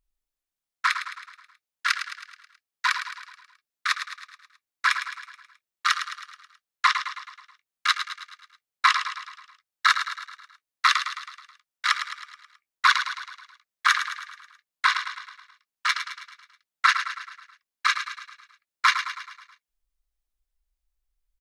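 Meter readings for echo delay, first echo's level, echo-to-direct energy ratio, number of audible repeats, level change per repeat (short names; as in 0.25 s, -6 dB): 0.107 s, -9.0 dB, -7.5 dB, 5, -5.5 dB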